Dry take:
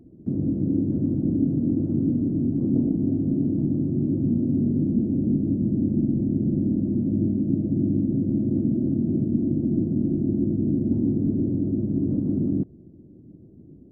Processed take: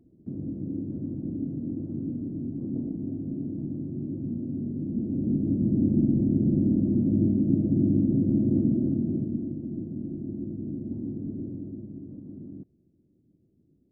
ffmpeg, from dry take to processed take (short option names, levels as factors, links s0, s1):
-af "afade=t=in:st=4.8:d=1.05:silence=0.334965,afade=t=out:st=8.57:d=1:silence=0.281838,afade=t=out:st=11.43:d=0.63:silence=0.446684"